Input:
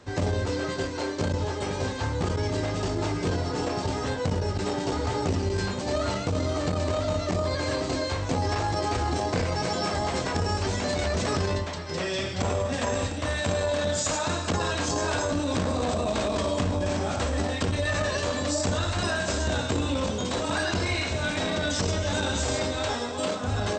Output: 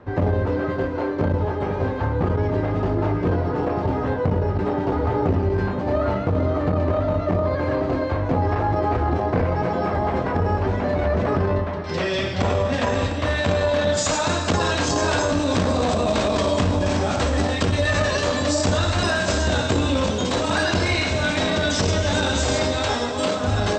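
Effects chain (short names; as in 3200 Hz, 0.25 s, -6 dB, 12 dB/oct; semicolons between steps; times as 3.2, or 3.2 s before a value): LPF 1500 Hz 12 dB/oct, from 11.84 s 4100 Hz, from 13.97 s 7200 Hz; reverb RT60 3.0 s, pre-delay 75 ms, DRR 13 dB; gain +6 dB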